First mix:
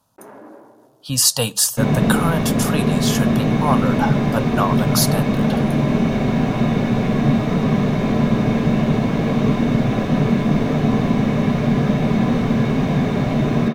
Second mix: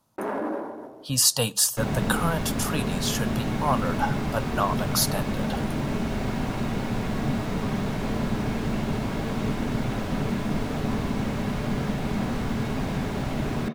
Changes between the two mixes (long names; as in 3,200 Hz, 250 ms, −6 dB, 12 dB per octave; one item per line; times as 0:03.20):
speech −4.5 dB
first sound +11.5 dB
second sound: send −11.0 dB